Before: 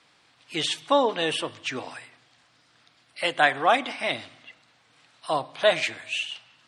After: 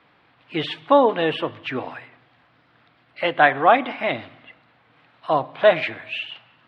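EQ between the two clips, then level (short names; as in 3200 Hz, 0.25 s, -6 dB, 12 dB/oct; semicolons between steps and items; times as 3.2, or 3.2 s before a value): air absorption 420 m; high shelf 5600 Hz -4.5 dB; +7.5 dB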